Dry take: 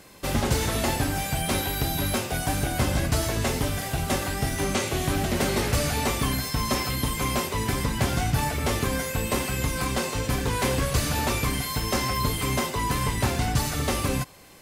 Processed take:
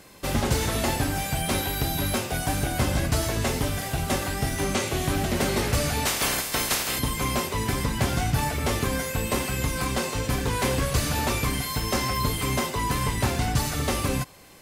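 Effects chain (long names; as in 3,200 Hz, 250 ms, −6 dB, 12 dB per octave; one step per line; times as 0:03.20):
0:06.05–0:06.98: ceiling on every frequency bin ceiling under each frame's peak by 22 dB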